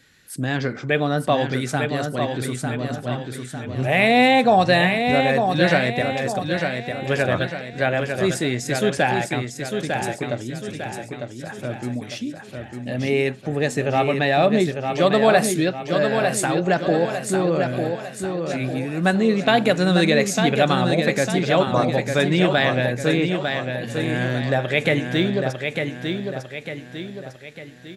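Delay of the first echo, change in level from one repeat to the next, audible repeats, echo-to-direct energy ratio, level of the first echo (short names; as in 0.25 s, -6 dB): 0.901 s, -6.5 dB, 5, -4.5 dB, -5.5 dB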